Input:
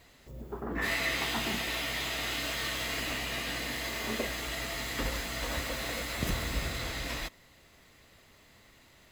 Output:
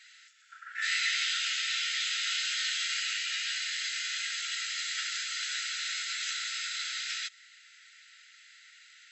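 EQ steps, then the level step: brick-wall FIR band-pass 1300–7900 Hz; dynamic EQ 1900 Hz, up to -6 dB, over -48 dBFS, Q 1.3; +6.5 dB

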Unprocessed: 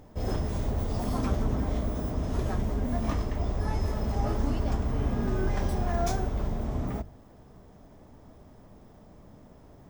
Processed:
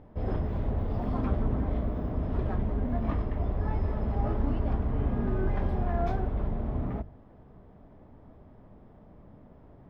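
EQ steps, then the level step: air absorption 430 m; 0.0 dB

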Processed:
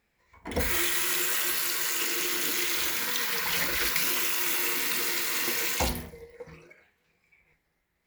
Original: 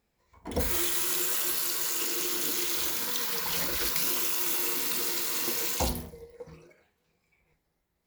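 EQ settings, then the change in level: bell 2000 Hz +9.5 dB 1.1 oct; 0.0 dB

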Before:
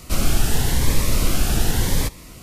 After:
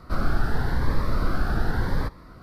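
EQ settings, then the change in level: resonant high shelf 2000 Hz -11 dB, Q 3; resonant high shelf 5600 Hz -8 dB, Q 3; -4.5 dB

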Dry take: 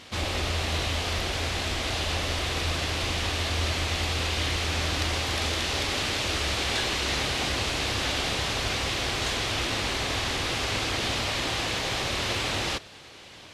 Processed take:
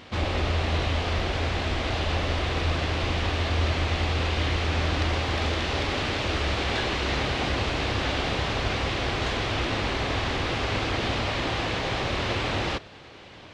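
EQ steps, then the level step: tape spacing loss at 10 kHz 21 dB; +4.5 dB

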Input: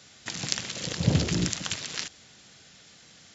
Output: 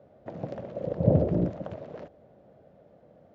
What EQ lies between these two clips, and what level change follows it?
synth low-pass 590 Hz, resonance Q 4.9; 0.0 dB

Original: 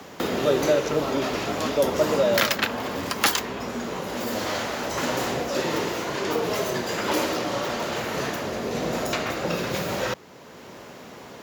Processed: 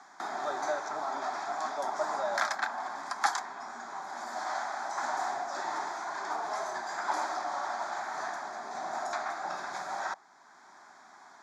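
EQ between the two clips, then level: dynamic EQ 700 Hz, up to +8 dB, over -37 dBFS, Q 1.2; speaker cabinet 500–8200 Hz, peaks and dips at 770 Hz +7 dB, 1600 Hz +4 dB, 3400 Hz +4 dB; fixed phaser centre 1200 Hz, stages 4; -8.0 dB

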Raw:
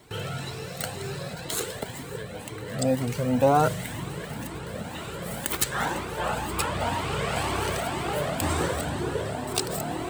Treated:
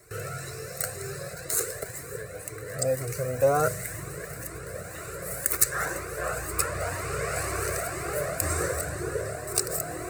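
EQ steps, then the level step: bell 11000 Hz +7 dB 2.2 oct; fixed phaser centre 880 Hz, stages 6; 0.0 dB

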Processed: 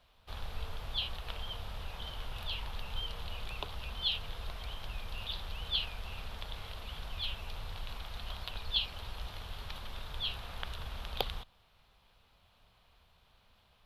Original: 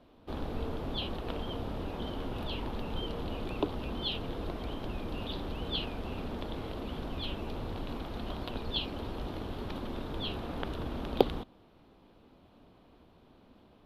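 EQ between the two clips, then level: passive tone stack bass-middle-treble 10-0-10; +5.0 dB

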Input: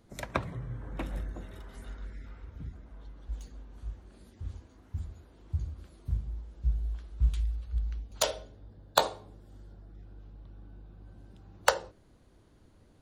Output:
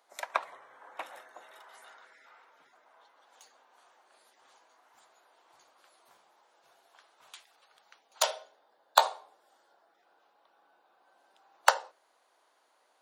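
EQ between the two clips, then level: ladder high-pass 640 Hz, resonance 35%; +8.0 dB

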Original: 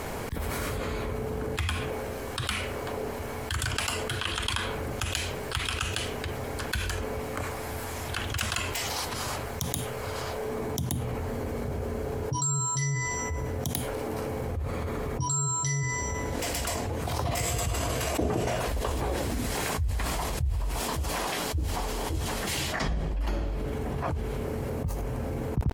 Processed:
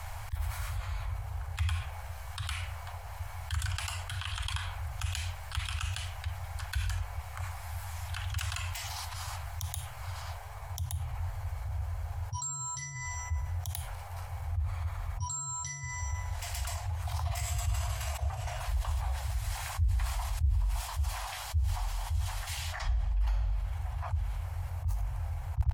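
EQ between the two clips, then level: Chebyshev band-stop 100–750 Hz, order 3; low shelf 240 Hz +9.5 dB; -7.5 dB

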